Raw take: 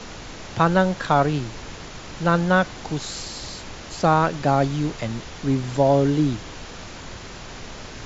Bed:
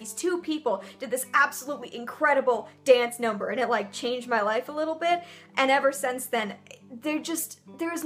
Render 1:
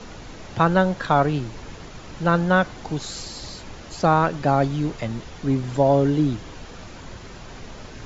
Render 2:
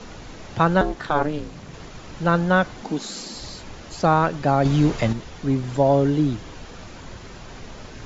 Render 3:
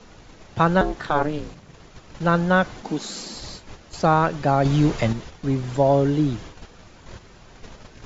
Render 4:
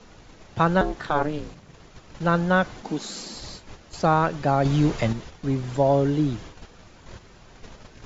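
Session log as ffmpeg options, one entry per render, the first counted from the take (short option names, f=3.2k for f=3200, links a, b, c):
-af "afftdn=nr=6:nf=-38"
-filter_complex "[0:a]asettb=1/sr,asplit=3[a][b][c];[a]atrim=end=0.814[d];[b]atrim=start=0.81:end=1.74,asetpts=PTS-STARTPTS,afade=t=in:d=0.004:c=qsin,afade=t=out:st=0.926:d=0.004:c=qsin,aeval=exprs='val(0)*sin(2*PI*150*n/s)':c=same[e];[c]atrim=start=1.736[f];[d][e]acrossfade=d=0.004:c1=hsin:c2=qsin[g];[g][f]acrossfade=d=0.004:c1=qsin:c2=hsin,asettb=1/sr,asplit=3[h][i][j];[h]atrim=end=2.824[k];[i]atrim=start=2.82:end=3.35,asetpts=PTS-STARTPTS,afade=t=in:d=0.004:c=qsin,afade=t=out:st=0.526:d=0.004:c=qsin,lowshelf=f=150:t=q:w=3:g=-12.5[l];[j]atrim=start=3.346[m];[k][l]acrossfade=d=0.004:c1=hsin:c2=qsin[n];[n][m]acrossfade=d=0.004:c1=qsin:c2=hsin,asettb=1/sr,asplit=3[o][p][q];[o]atrim=end=4.654[r];[p]atrim=start=4.65:end=5.13,asetpts=PTS-STARTPTS,afade=t=in:d=0.004:c=qsin,afade=t=out:st=0.476:d=0.004:c=qsin,acontrast=78[s];[q]atrim=start=5.126[t];[r][s]acrossfade=d=0.004:c1=hsin:c2=qsin[u];[u][t]acrossfade=d=0.004:c1=qsin:c2=hsin"
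-af "agate=range=-8dB:threshold=-36dB:ratio=16:detection=peak,equalizer=f=260:w=7.6:g=-3"
-af "volume=-2dB"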